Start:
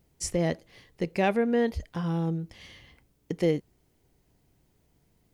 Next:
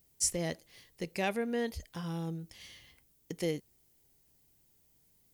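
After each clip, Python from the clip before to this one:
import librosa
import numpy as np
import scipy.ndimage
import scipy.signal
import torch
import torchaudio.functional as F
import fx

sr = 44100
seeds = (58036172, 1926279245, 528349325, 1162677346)

y = scipy.signal.lfilter([1.0, -0.8], [1.0], x)
y = F.gain(torch.from_numpy(y), 5.0).numpy()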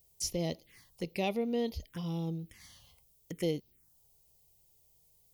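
y = fx.env_phaser(x, sr, low_hz=240.0, high_hz=1600.0, full_db=-36.5)
y = F.gain(torch.from_numpy(y), 2.0).numpy()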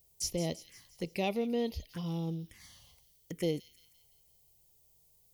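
y = fx.echo_wet_highpass(x, sr, ms=171, feedback_pct=51, hz=3500.0, wet_db=-11)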